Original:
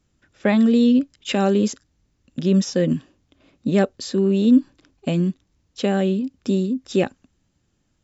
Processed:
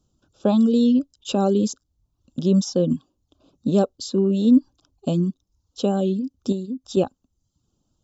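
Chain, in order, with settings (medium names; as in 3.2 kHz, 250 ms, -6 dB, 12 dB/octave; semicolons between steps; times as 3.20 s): reverb removal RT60 0.58 s; 6.52–6.97 s: compression 2:1, threshold -29 dBFS, peak gain reduction 7 dB; Butterworth band-stop 2 kHz, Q 1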